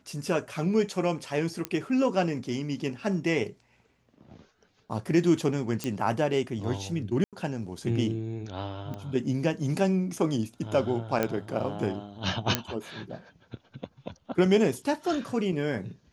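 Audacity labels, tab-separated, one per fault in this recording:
1.650000	1.650000	pop -14 dBFS
5.840000	5.840000	pop -15 dBFS
7.240000	7.330000	dropout 87 ms
8.940000	8.940000	pop -25 dBFS
11.230000	11.230000	pop -12 dBFS
12.550000	12.550000	pop -6 dBFS

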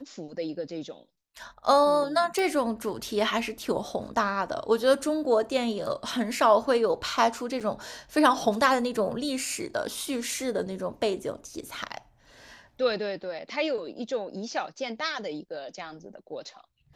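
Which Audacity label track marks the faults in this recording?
2.390000	2.390000	pop
7.600000	7.610000	dropout 6.8 ms

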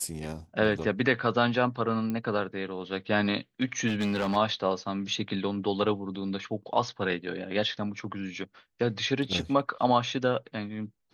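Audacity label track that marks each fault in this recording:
2.100000	2.100000	pop -20 dBFS
3.870000	4.370000	clipped -24 dBFS

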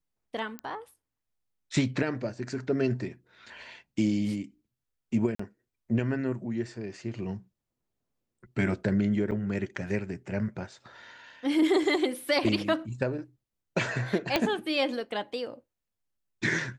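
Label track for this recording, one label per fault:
0.590000	0.590000	pop -23 dBFS
5.350000	5.390000	dropout 44 ms
9.310000	9.320000	dropout 7.7 ms
14.360000	14.360000	pop -10 dBFS

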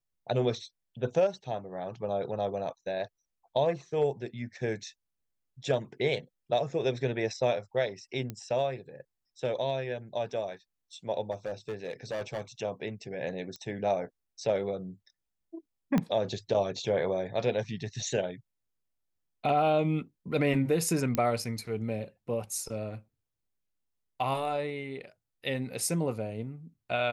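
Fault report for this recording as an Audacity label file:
8.300000	8.300000	pop -22 dBFS
11.310000	12.410000	clipped -30 dBFS
13.560000	13.560000	pop -28 dBFS
15.980000	15.980000	pop -15 dBFS
21.150000	21.150000	pop -14 dBFS

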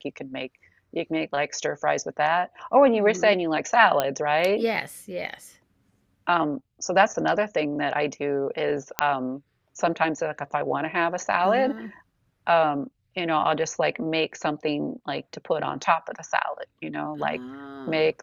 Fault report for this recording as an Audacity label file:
4.000000	4.000000	pop -8 dBFS
8.990000	8.990000	pop -4 dBFS

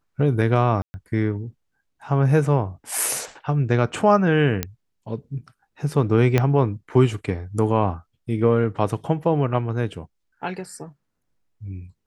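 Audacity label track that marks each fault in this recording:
0.820000	0.940000	dropout 120 ms
2.980000	2.980000	dropout 2.3 ms
4.630000	4.630000	pop -7 dBFS
6.380000	6.380000	pop -6 dBFS

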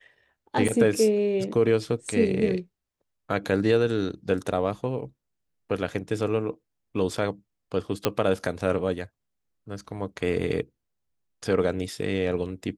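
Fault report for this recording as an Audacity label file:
0.680000	0.690000	dropout 5.3 ms
8.050000	8.050000	pop -7 dBFS

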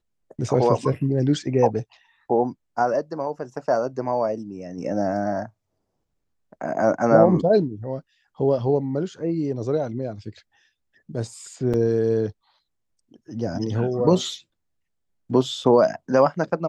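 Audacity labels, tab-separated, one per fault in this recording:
11.730000	11.740000	dropout 6.8 ms

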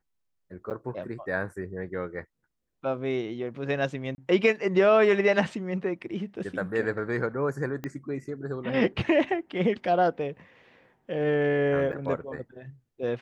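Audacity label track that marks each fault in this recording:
0.700000	0.710000	dropout 8.7 ms
4.150000	4.180000	dropout 30 ms
7.840000	7.840000	pop -20 dBFS
11.920000	11.930000	dropout 8.9 ms

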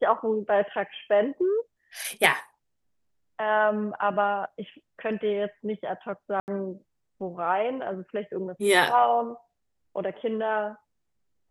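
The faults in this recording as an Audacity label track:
6.400000	6.480000	dropout 79 ms

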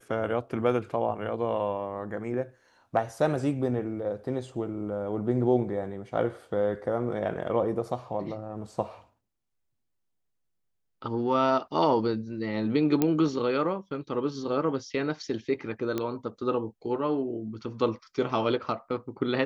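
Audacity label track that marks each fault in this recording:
13.020000	13.020000	pop -10 dBFS
15.980000	15.980000	pop -16 dBFS

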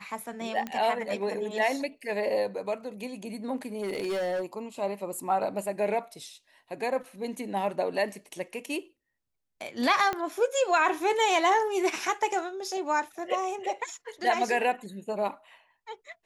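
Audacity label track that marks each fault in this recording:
0.670000	0.670000	pop -20 dBFS
3.810000	4.420000	clipped -27 dBFS
10.130000	10.130000	pop -16 dBFS

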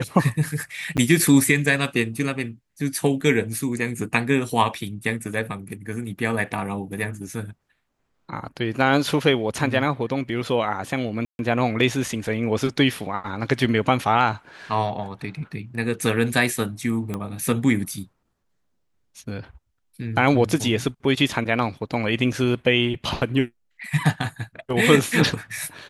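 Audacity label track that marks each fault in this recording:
0.970000	0.980000	dropout 8.4 ms
11.250000	11.390000	dropout 141 ms
17.140000	17.140000	pop -15 dBFS

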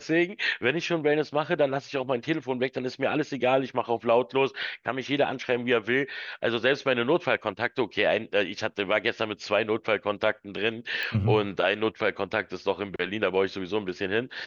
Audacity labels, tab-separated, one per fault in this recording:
11.030000	11.030000	pop -19 dBFS

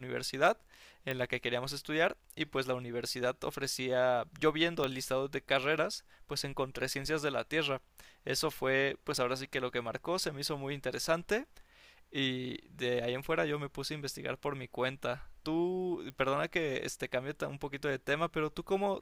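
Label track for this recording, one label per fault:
1.110000	1.110000	pop -21 dBFS
4.840000	4.840000	pop -18 dBFS
16.100000	16.100000	pop -30 dBFS

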